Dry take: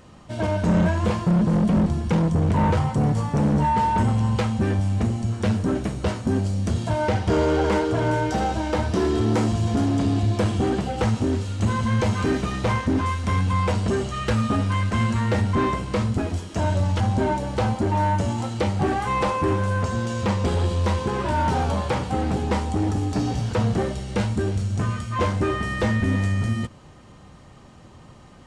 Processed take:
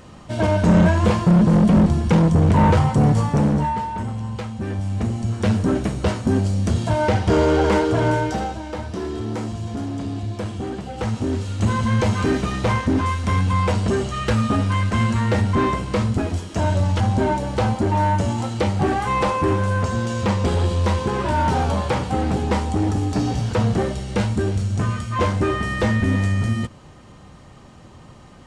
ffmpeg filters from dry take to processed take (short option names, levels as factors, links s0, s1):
-af "volume=15,afade=t=out:st=3.23:d=0.63:silence=0.266073,afade=t=in:st=4.55:d=1.03:silence=0.316228,afade=t=out:st=8.07:d=0.52:silence=0.334965,afade=t=in:st=10.82:d=0.83:silence=0.375837"